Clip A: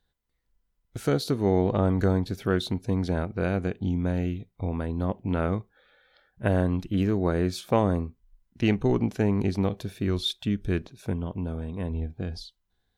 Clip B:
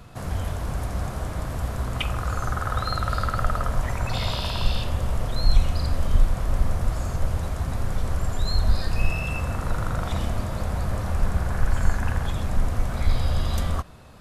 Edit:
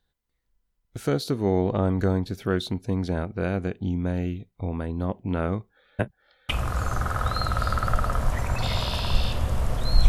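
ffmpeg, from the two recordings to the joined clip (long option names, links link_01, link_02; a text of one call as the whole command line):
ffmpeg -i cue0.wav -i cue1.wav -filter_complex "[0:a]apad=whole_dur=10.08,atrim=end=10.08,asplit=2[link_01][link_02];[link_01]atrim=end=5.992[link_03];[link_02]atrim=start=5.988:end=6.492,asetpts=PTS-STARTPTS,areverse[link_04];[1:a]atrim=start=1.998:end=5.59[link_05];[link_03][link_04]acrossfade=duration=0.004:curve1=hsin:curve2=hsin[link_06];[link_06][link_05]acrossfade=duration=0.004:curve1=hsin:curve2=hsin" out.wav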